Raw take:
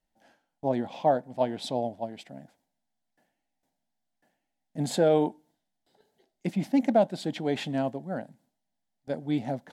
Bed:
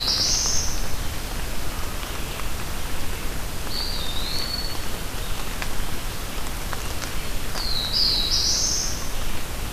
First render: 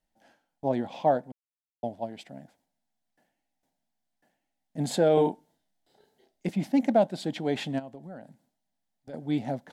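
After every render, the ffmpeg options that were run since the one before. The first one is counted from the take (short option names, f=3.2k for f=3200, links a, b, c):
-filter_complex "[0:a]asettb=1/sr,asplit=3[a][b][c];[a]atrim=end=5.144[d];[b]atrim=start=5.14:end=6.49,asetpts=PTS-STARTPTS,afade=t=in:d=0.004:c=qsin,afade=t=out:st=1.346:d=0.004:c=qsin,asplit=2[e][f];[f]adelay=31,volume=-2dB[g];[e][g]amix=inputs=2:normalize=0,atrim=end_sample=59535[h];[c]atrim=start=6.486[i];[d][h]acrossfade=d=0.004:c1=hsin:c2=qsin[j];[j][i]acrossfade=d=0.004:c1=qsin:c2=hsin,asplit=3[k][l][m];[k]afade=t=out:st=7.78:d=0.02[n];[l]acompressor=threshold=-40dB:ratio=4:attack=3.2:release=140:knee=1:detection=peak,afade=t=in:st=7.78:d=0.02,afade=t=out:st=9.13:d=0.02[o];[m]afade=t=in:st=9.13:d=0.02[p];[n][o][p]amix=inputs=3:normalize=0,asplit=3[q][r][s];[q]atrim=end=1.32,asetpts=PTS-STARTPTS,afade=t=out:st=1.316:d=0.004:c=hsin[t];[r]atrim=start=1.32:end=1.83,asetpts=PTS-STARTPTS,volume=0[u];[s]atrim=start=1.83,asetpts=PTS-STARTPTS,afade=t=in:d=0.004:c=hsin[v];[t][u][v]concat=n=3:v=0:a=1"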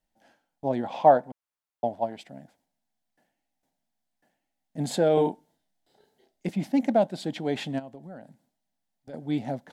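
-filter_complex "[0:a]asettb=1/sr,asplit=3[a][b][c];[a]atrim=end=0.834[d];[b]atrim=start=0.83:end=2.17,asetpts=PTS-STARTPTS,afade=t=in:d=0.004:c=qsin,afade=t=out:st=1.336:d=0.004:c=qsin,equalizer=f=1k:w=0.65:g=8.5[e];[c]atrim=start=2.166[f];[d][e]acrossfade=d=0.004:c1=hsin:c2=qsin[g];[g][f]acrossfade=d=0.004:c1=qsin:c2=hsin"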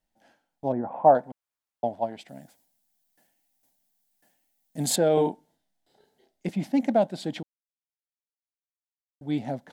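-filter_complex "[0:a]asettb=1/sr,asplit=3[a][b][c];[a]atrim=end=0.724[d];[b]atrim=start=0.72:end=1.15,asetpts=PTS-STARTPTS,afade=t=in:d=0.004:c=qsin,afade=t=out:st=0.426:d=0.004:c=qsin,lowpass=f=1.4k:w=0.5412,lowpass=f=1.4k:w=1.3066[e];[c]atrim=start=1.146[f];[d][e]acrossfade=d=0.004:c1=hsin:c2=qsin[g];[g][f]acrossfade=d=0.004:c1=qsin:c2=hsin,asettb=1/sr,asplit=3[h][i][j];[h]atrim=end=2.284[k];[i]atrim=start=2.28:end=4.96,asetpts=PTS-STARTPTS,afade=t=in:d=0.004:c=qsin,afade=t=out:st=2.676:d=0.004:c=qsin,aemphasis=mode=production:type=75kf[l];[j]atrim=start=4.956[m];[k][l]acrossfade=d=0.004:c1=hsin:c2=qsin[n];[n][m]acrossfade=d=0.004:c1=qsin:c2=hsin,asplit=3[o][p][q];[o]atrim=end=7.43,asetpts=PTS-STARTPTS,afade=t=out:st=7.426:d=0.004:c=hsin[r];[p]atrim=start=7.43:end=9.21,asetpts=PTS-STARTPTS,volume=0[s];[q]atrim=start=9.21,asetpts=PTS-STARTPTS,afade=t=in:d=0.004:c=hsin[t];[r][s][t]concat=n=3:v=0:a=1"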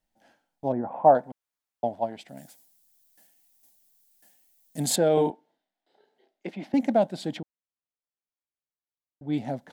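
-filter_complex "[0:a]asettb=1/sr,asplit=3[a][b][c];[a]atrim=end=2.374[d];[b]atrim=start=2.37:end=4.8,asetpts=PTS-STARTPTS,afade=t=in:d=0.004:c=qsin,afade=t=out:st=2.426:d=0.004:c=qsin,highshelf=f=3.2k:g=10[e];[c]atrim=start=4.796[f];[d][e]acrossfade=d=0.004:c1=hsin:c2=qsin[g];[g][f]acrossfade=d=0.004:c1=qsin:c2=hsin,asettb=1/sr,asplit=3[h][i][j];[h]atrim=end=5.304[k];[i]atrim=start=5.3:end=6.74,asetpts=PTS-STARTPTS,afade=t=in:d=0.004:c=qsin,afade=t=out:st=1.436:d=0.004:c=qsin,acrossover=split=250 4300:gain=0.0891 1 0.141[l][m][n];[l][m][n]amix=inputs=3:normalize=0[o];[j]atrim=start=6.736[p];[k][o]acrossfade=d=0.004:c1=hsin:c2=qsin[q];[q][p]acrossfade=d=0.004:c1=qsin:c2=hsin,asplit=3[r][s][t];[r]afade=t=out:st=7.36:d=0.02[u];[s]lowpass=f=1.6k:p=1,afade=t=in:st=7.36:d=0.02,afade=t=out:st=9.32:d=0.02[v];[t]afade=t=in:st=9.32:d=0.02[w];[u][v][w]amix=inputs=3:normalize=0"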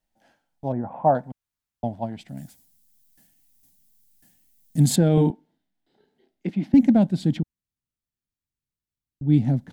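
-af "asubboost=boost=11.5:cutoff=180"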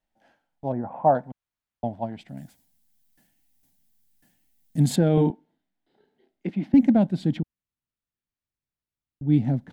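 -af "bass=f=250:g=-3,treble=f=4k:g=-8"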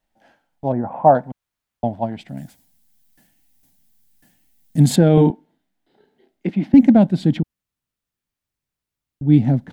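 -af "volume=7dB,alimiter=limit=-2dB:level=0:latency=1"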